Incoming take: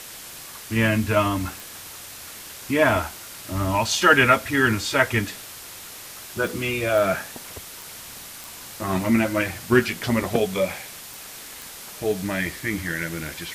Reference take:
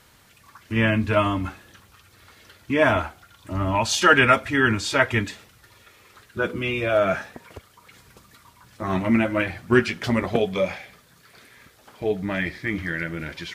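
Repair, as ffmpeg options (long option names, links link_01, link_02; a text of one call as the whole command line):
ffmpeg -i in.wav -af "adeclick=threshold=4,afwtdn=0.013" out.wav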